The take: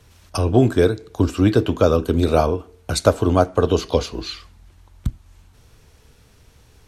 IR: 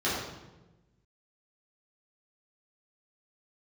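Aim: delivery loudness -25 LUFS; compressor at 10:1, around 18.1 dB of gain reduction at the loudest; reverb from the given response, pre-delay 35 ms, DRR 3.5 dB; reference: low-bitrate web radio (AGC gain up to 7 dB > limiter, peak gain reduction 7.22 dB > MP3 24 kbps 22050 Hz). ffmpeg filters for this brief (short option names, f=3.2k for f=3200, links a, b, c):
-filter_complex "[0:a]acompressor=threshold=-28dB:ratio=10,asplit=2[a][b];[1:a]atrim=start_sample=2205,adelay=35[c];[b][c]afir=irnorm=-1:irlink=0,volume=-15dB[d];[a][d]amix=inputs=2:normalize=0,dynaudnorm=m=7dB,alimiter=limit=-22dB:level=0:latency=1,volume=9dB" -ar 22050 -c:a libmp3lame -b:a 24k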